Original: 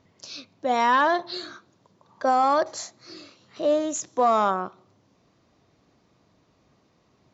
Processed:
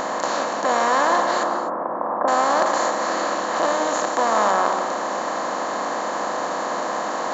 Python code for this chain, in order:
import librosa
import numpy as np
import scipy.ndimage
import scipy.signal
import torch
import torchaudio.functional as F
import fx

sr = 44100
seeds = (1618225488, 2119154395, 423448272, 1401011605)

y = fx.bin_compress(x, sr, power=0.2)
y = fx.lowpass(y, sr, hz=1300.0, slope=24, at=(1.43, 2.28))
y = fx.rev_gated(y, sr, seeds[0], gate_ms=280, shape='flat', drr_db=7.0)
y = y * 10.0 ** (-5.5 / 20.0)